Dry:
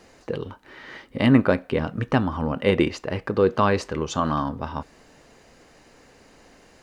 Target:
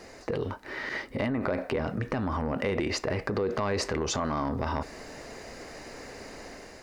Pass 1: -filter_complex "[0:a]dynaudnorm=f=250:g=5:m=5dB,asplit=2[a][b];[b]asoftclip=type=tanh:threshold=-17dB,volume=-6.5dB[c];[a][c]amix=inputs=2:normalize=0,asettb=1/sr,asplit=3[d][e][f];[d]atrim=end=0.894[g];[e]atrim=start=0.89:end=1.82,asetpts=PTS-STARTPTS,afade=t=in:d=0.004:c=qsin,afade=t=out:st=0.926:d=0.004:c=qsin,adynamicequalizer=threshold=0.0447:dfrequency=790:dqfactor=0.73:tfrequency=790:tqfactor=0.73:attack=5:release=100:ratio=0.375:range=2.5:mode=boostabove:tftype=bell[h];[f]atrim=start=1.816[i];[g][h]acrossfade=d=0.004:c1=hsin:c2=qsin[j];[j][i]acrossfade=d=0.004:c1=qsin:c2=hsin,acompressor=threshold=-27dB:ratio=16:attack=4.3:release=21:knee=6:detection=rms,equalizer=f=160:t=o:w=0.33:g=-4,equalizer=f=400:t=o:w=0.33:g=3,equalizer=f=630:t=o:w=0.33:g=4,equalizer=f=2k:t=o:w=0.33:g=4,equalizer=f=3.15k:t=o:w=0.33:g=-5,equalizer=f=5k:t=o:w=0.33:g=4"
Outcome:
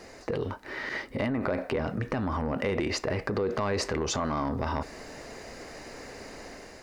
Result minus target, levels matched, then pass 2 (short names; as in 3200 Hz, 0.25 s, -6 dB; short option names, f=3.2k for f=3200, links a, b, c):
soft clip: distortion +8 dB
-filter_complex "[0:a]dynaudnorm=f=250:g=5:m=5dB,asplit=2[a][b];[b]asoftclip=type=tanh:threshold=-9dB,volume=-6.5dB[c];[a][c]amix=inputs=2:normalize=0,asettb=1/sr,asplit=3[d][e][f];[d]atrim=end=0.894[g];[e]atrim=start=0.89:end=1.82,asetpts=PTS-STARTPTS,afade=t=in:d=0.004:c=qsin,afade=t=out:st=0.926:d=0.004:c=qsin,adynamicequalizer=threshold=0.0447:dfrequency=790:dqfactor=0.73:tfrequency=790:tqfactor=0.73:attack=5:release=100:ratio=0.375:range=2.5:mode=boostabove:tftype=bell[h];[f]atrim=start=1.816[i];[g][h]acrossfade=d=0.004:c1=hsin:c2=qsin[j];[j][i]acrossfade=d=0.004:c1=qsin:c2=hsin,acompressor=threshold=-27dB:ratio=16:attack=4.3:release=21:knee=6:detection=rms,equalizer=f=160:t=o:w=0.33:g=-4,equalizer=f=400:t=o:w=0.33:g=3,equalizer=f=630:t=o:w=0.33:g=4,equalizer=f=2k:t=o:w=0.33:g=4,equalizer=f=3.15k:t=o:w=0.33:g=-5,equalizer=f=5k:t=o:w=0.33:g=4"